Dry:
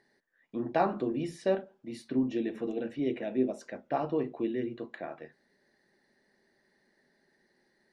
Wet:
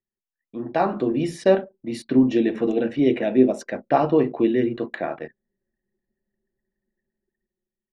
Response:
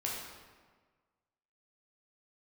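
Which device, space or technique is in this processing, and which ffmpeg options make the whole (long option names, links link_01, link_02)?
voice memo with heavy noise removal: -af "anlmdn=0.001,dynaudnorm=framelen=270:gausssize=7:maxgain=12.5dB"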